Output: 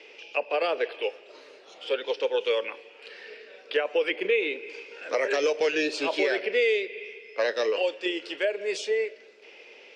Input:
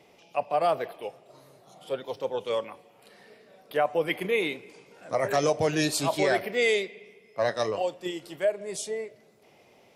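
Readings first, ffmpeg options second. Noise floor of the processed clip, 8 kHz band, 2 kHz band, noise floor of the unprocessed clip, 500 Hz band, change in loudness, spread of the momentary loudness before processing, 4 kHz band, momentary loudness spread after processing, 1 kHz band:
−51 dBFS, −7.5 dB, +3.0 dB, −59 dBFS, +1.5 dB, +0.5 dB, 12 LU, +2.5 dB, 15 LU, −5.5 dB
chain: -filter_complex "[0:a]crystalizer=i=4.5:c=0,highpass=frequency=320:width=0.5412,highpass=frequency=320:width=1.3066,equalizer=frequency=460:width_type=q:width=4:gain=7,equalizer=frequency=710:width_type=q:width=4:gain=-9,equalizer=frequency=1100:width_type=q:width=4:gain=-5,equalizer=frequency=1600:width_type=q:width=4:gain=5,equalizer=frequency=2600:width_type=q:width=4:gain=8,equalizer=frequency=3900:width_type=q:width=4:gain=-5,lowpass=frequency=4400:width=0.5412,lowpass=frequency=4400:width=1.3066,acrossover=split=790|2500[link_01][link_02][link_03];[link_01]acompressor=threshold=-28dB:ratio=4[link_04];[link_02]acompressor=threshold=-38dB:ratio=4[link_05];[link_03]acompressor=threshold=-40dB:ratio=4[link_06];[link_04][link_05][link_06]amix=inputs=3:normalize=0,volume=4dB"

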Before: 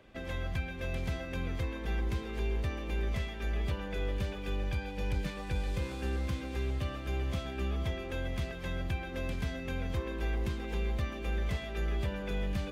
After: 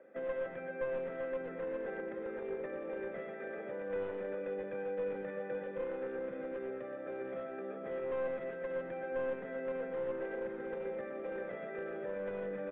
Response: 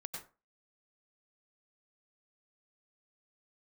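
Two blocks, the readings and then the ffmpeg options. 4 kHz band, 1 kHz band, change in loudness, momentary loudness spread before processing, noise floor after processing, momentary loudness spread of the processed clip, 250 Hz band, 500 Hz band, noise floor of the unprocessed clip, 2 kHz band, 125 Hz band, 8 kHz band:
below −20 dB, −3.0 dB, −4.0 dB, 3 LU, −44 dBFS, 4 LU, −6.0 dB, +5.0 dB, −41 dBFS, −4.5 dB, −22.0 dB, can't be measured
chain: -filter_complex "[0:a]highpass=frequency=180:width=0.5412,highpass=frequency=180:width=1.3066,highshelf=frequency=1900:width_type=q:width=3:gain=-13,aecho=1:1:0.9:0.48,alimiter=level_in=8.5dB:limit=-24dB:level=0:latency=1:release=20,volume=-8.5dB,asplit=3[link_01][link_02][link_03];[link_01]bandpass=frequency=530:width_type=q:width=8,volume=0dB[link_04];[link_02]bandpass=frequency=1840:width_type=q:width=8,volume=-6dB[link_05];[link_03]bandpass=frequency=2480:width_type=q:width=8,volume=-9dB[link_06];[link_04][link_05][link_06]amix=inputs=3:normalize=0,aeval=exprs='clip(val(0),-1,0.00316)':channel_layout=same,aecho=1:1:122:0.376,asplit=2[link_07][link_08];[1:a]atrim=start_sample=2205,lowpass=frequency=4800:width=0.5412,lowpass=frequency=4800:width=1.3066[link_09];[link_08][link_09]afir=irnorm=-1:irlink=0,volume=-2.5dB[link_10];[link_07][link_10]amix=inputs=2:normalize=0,aresample=8000,aresample=44100,volume=11dB"

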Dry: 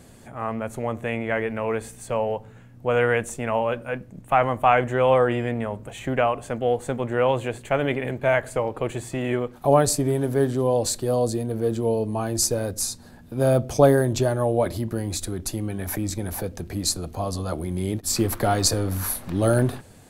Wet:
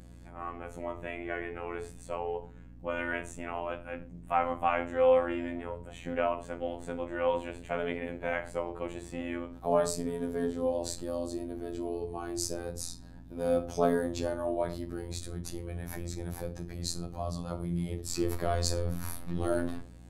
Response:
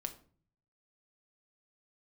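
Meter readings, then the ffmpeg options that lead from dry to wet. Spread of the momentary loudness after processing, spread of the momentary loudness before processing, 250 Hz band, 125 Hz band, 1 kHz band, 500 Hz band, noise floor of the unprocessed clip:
11 LU, 10 LU, −9.0 dB, −13.0 dB, −9.5 dB, −9.0 dB, −47 dBFS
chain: -filter_complex "[0:a]highshelf=frequency=10000:gain=-10[link_01];[1:a]atrim=start_sample=2205,atrim=end_sample=6174[link_02];[link_01][link_02]afir=irnorm=-1:irlink=0,afftfilt=real='hypot(re,im)*cos(PI*b)':imag='0':win_size=2048:overlap=0.75,aeval=exprs='val(0)+0.00562*(sin(2*PI*60*n/s)+sin(2*PI*2*60*n/s)/2+sin(2*PI*3*60*n/s)/3+sin(2*PI*4*60*n/s)/4+sin(2*PI*5*60*n/s)/5)':channel_layout=same,volume=-4.5dB"

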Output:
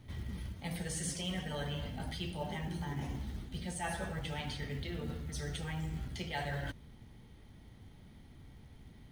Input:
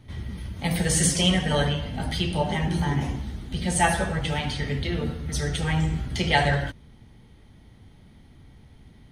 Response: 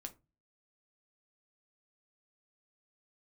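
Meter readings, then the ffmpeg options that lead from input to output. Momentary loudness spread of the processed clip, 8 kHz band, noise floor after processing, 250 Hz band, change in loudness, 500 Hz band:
19 LU, −16.0 dB, −56 dBFS, −14.0 dB, −14.5 dB, −14.5 dB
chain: -af "areverse,acompressor=threshold=-33dB:ratio=4,areverse,acrusher=bits=7:mode=log:mix=0:aa=0.000001,volume=-4.5dB"

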